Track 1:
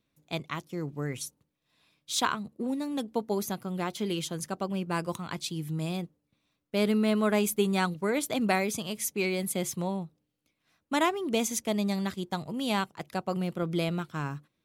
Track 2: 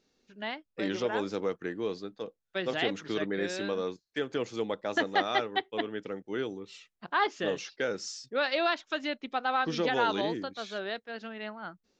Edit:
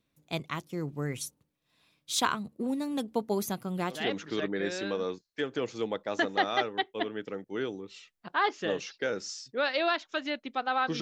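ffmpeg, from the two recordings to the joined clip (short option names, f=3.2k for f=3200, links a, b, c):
-filter_complex "[0:a]apad=whole_dur=11.01,atrim=end=11.01,atrim=end=4.1,asetpts=PTS-STARTPTS[a];[1:a]atrim=start=2.66:end=9.79,asetpts=PTS-STARTPTS[b];[a][b]acrossfade=d=0.22:c1=tri:c2=tri"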